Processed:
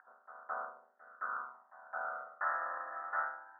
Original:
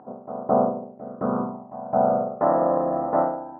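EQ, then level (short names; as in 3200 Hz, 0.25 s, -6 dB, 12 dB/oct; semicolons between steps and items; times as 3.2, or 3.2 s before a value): Butterworth band-pass 1600 Hz, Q 3.7; air absorption 410 m; +10.0 dB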